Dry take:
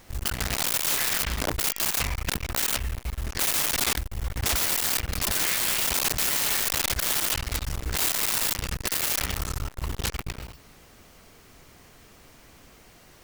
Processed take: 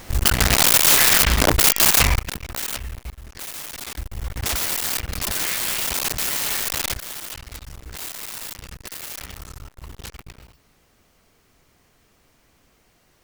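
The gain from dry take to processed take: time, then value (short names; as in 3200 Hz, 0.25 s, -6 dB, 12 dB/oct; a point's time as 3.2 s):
+11 dB
from 2.19 s -2 dB
from 3.1 s -9 dB
from 3.98 s +1 dB
from 6.97 s -8 dB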